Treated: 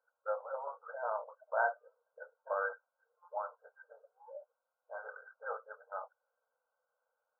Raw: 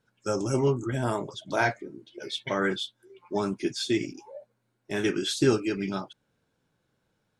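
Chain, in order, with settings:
linear-phase brick-wall band-pass 460–1,600 Hz
level −5 dB

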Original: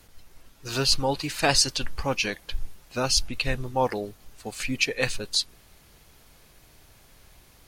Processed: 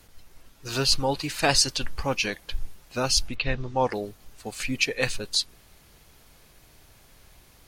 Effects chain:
0:03.34–0:03.92: low-pass filter 3,600 Hz → 9,500 Hz 24 dB per octave

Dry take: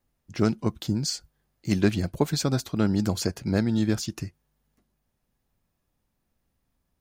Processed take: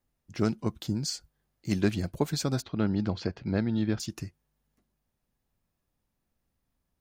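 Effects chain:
0:02.62–0:04.00: low-pass filter 4,100 Hz 24 dB per octave
level −4 dB

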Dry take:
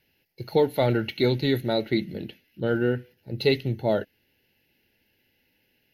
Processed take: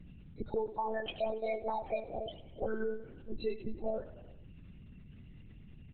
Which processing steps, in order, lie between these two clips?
parametric band 190 Hz −15 dB 0.42 octaves
downward compressor 8 to 1, threshold −31 dBFS, peak gain reduction 14.5 dB
0:00.78–0:02.65: frequency shifter +280 Hz
spectral peaks only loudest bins 16
mains hum 60 Hz, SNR 13 dB
surface crackle 330 per second −57 dBFS
repeating echo 94 ms, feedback 58%, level −16.5 dB
one-pitch LPC vocoder at 8 kHz 220 Hz

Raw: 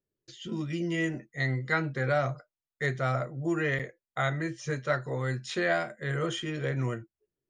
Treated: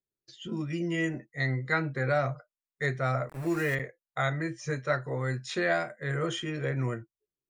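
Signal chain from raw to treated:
0:03.29–0:03.75: centre clipping without the shift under −37 dBFS
noise reduction from a noise print of the clip's start 9 dB

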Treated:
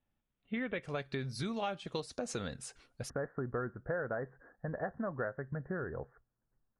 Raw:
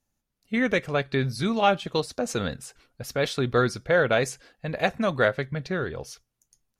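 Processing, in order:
Butterworth low-pass 3,700 Hz 96 dB per octave, from 0:00.82 11,000 Hz, from 0:03.08 1,800 Hz
downward compressor 4 to 1, threshold −32 dBFS, peak gain reduction 14.5 dB
level −3.5 dB

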